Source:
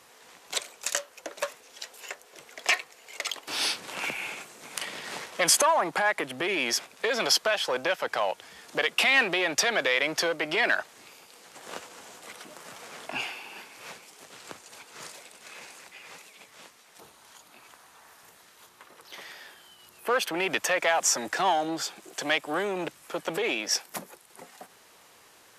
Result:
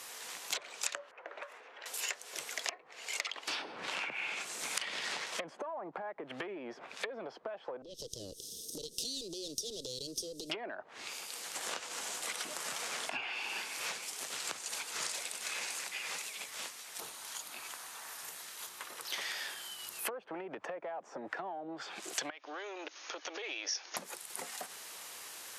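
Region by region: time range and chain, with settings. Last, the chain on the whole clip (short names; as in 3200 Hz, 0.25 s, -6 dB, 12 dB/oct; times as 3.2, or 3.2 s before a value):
1.11–1.86 low-pass opened by the level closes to 1400 Hz, open at -29 dBFS + compressor 16:1, threshold -42 dBFS + three-band isolator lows -18 dB, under 300 Hz, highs -21 dB, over 2300 Hz
7.82–10.5 minimum comb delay 0.33 ms + elliptic band-stop 460–4200 Hz + compressor, threshold -40 dBFS
22.3–23.97 brick-wall FIR band-pass 260–6800 Hz + compressor 3:1, threshold -46 dBFS
whole clip: treble ducked by the level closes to 590 Hz, closed at -24 dBFS; compressor 10:1, threshold -41 dBFS; tilt +2.5 dB/oct; gain +4 dB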